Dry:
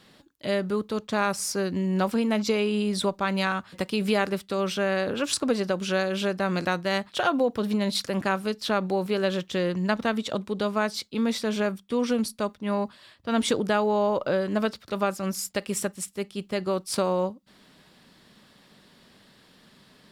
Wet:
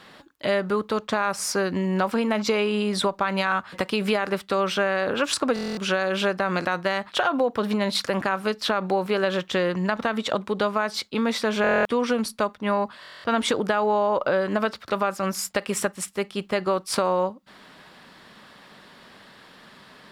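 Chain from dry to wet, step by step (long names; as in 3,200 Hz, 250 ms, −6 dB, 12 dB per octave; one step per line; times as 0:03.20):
parametric band 1,200 Hz +10.5 dB 2.8 octaves
brickwall limiter −8.5 dBFS, peak gain reduction 7.5 dB
downward compressor 2 to 1, threshold −24 dBFS, peak gain reduction 6.5 dB
buffer that repeats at 0:05.54/0:11.62/0:13.01, samples 1,024, times 9
level +1.5 dB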